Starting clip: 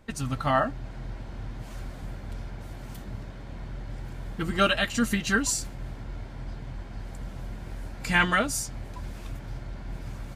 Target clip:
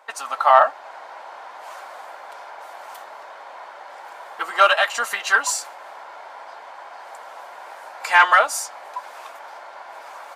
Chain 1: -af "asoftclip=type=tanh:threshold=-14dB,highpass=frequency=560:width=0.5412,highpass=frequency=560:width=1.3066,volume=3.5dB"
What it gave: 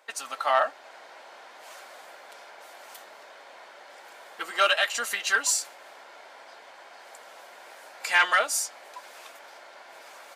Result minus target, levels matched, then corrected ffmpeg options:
1,000 Hz band −3.5 dB
-af "asoftclip=type=tanh:threshold=-14dB,highpass=frequency=560:width=0.5412,highpass=frequency=560:width=1.3066,equalizer=frequency=950:width=0.94:gain=13,volume=3.5dB"

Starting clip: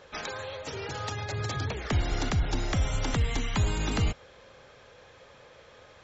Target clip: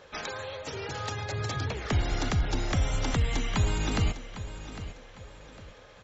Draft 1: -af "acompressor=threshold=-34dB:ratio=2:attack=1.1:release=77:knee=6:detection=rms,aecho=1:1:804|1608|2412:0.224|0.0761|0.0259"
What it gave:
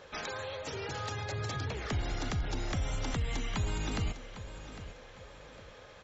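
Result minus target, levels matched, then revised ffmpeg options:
downward compressor: peak gain reduction +7.5 dB
-af "aecho=1:1:804|1608|2412:0.224|0.0761|0.0259"

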